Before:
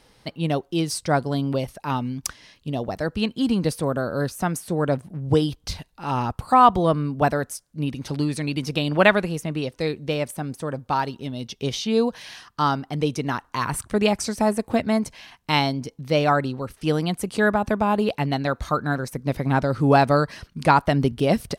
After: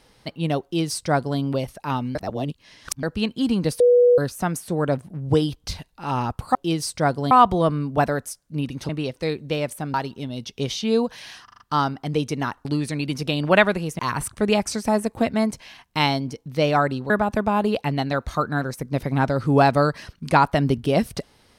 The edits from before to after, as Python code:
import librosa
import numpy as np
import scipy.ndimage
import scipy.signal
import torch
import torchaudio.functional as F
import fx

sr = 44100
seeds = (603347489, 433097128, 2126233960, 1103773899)

y = fx.edit(x, sr, fx.duplicate(start_s=0.63, length_s=0.76, to_s=6.55),
    fx.reverse_span(start_s=2.15, length_s=0.88),
    fx.bleep(start_s=3.8, length_s=0.38, hz=488.0, db=-11.0),
    fx.move(start_s=8.13, length_s=1.34, to_s=13.52),
    fx.cut(start_s=10.52, length_s=0.45),
    fx.stutter(start_s=12.47, slice_s=0.04, count=5),
    fx.cut(start_s=16.63, length_s=0.81), tone=tone)